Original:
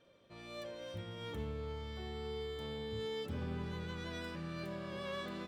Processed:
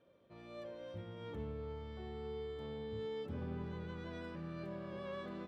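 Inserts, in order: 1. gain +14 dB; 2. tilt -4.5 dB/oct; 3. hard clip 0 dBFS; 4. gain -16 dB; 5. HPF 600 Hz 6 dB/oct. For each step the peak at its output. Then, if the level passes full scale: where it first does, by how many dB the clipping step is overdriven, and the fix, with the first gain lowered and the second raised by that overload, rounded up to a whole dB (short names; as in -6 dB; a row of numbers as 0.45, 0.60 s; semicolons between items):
-14.5, -3.0, -3.0, -19.0, -31.0 dBFS; no overload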